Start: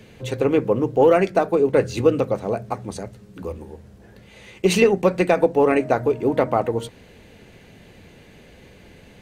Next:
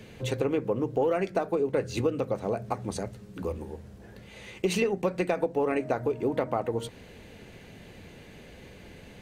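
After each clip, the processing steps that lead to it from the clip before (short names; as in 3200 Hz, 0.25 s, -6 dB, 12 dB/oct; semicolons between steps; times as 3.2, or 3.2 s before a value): compressor 3:1, threshold -25 dBFS, peak gain reduction 11 dB; gain -1 dB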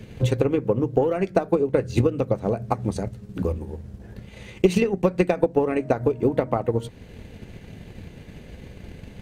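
low shelf 240 Hz +10.5 dB; transient shaper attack +7 dB, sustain -3 dB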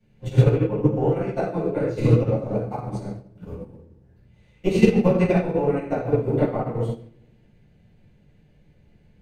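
reverb RT60 1.1 s, pre-delay 6 ms, DRR -11.5 dB; upward expander 2.5:1, over -17 dBFS; gain -8 dB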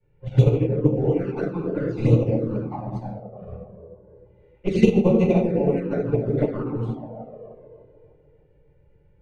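band-limited delay 0.304 s, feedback 45%, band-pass 400 Hz, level -4 dB; low-pass opened by the level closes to 1800 Hz, open at -12 dBFS; envelope flanger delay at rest 2.2 ms, full sweep at -14 dBFS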